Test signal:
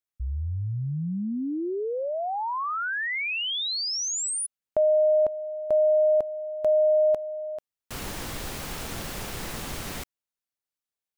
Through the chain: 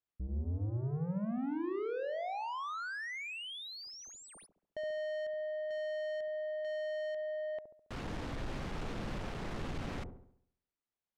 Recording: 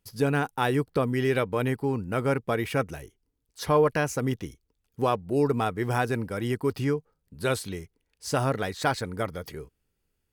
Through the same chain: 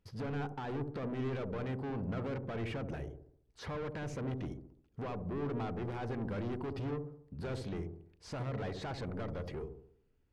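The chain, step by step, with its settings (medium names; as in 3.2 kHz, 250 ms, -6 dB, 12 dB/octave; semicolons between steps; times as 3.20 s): treble shelf 5.3 kHz -2 dB; peak limiter -21 dBFS; saturation -38 dBFS; tape spacing loss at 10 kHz 22 dB; feedback echo behind a low-pass 69 ms, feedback 48%, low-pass 530 Hz, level -3.5 dB; trim +2 dB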